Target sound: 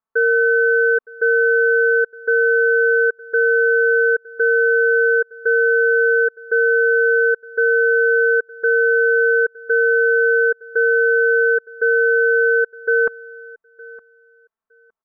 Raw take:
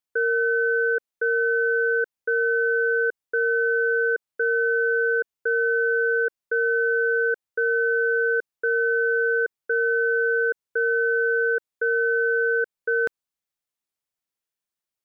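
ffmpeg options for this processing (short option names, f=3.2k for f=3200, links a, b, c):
-af "lowpass=f=1.2k:t=q:w=2.6,aecho=1:1:4.5:0.94,aecho=1:1:913|1826:0.0794|0.0135"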